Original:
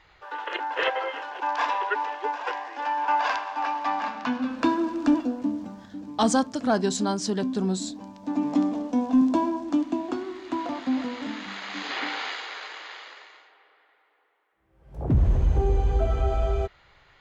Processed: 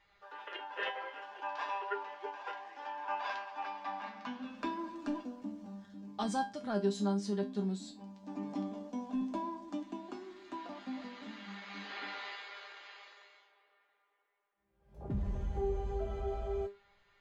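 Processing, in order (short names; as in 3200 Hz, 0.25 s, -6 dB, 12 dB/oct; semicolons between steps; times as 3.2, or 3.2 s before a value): dynamic EQ 7100 Hz, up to -7 dB, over -53 dBFS, Q 1.5; resonator 200 Hz, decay 0.25 s, harmonics all, mix 90%; gain -1 dB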